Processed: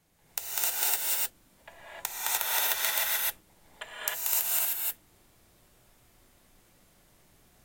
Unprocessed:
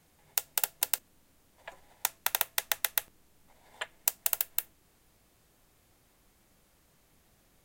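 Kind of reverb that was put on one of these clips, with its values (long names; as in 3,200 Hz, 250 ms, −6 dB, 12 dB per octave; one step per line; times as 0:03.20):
reverb whose tail is shaped and stops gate 330 ms rising, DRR −8 dB
level −4.5 dB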